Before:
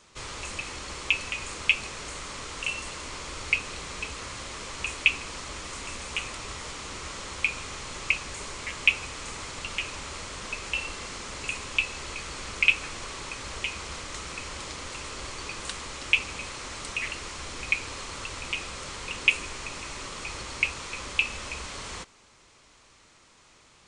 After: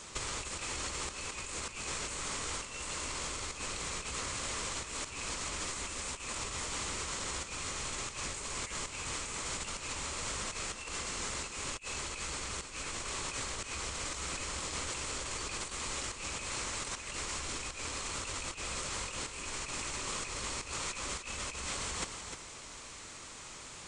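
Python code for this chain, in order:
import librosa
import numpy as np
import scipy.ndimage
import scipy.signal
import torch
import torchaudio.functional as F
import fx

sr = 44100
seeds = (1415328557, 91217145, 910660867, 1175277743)

y = fx.peak_eq(x, sr, hz=7800.0, db=7.0, octaves=0.57)
y = fx.over_compress(y, sr, threshold_db=-40.0, ratio=-0.5)
y = y + 10.0 ** (-7.5 / 20.0) * np.pad(y, (int(304 * sr / 1000.0), 0))[:len(y)]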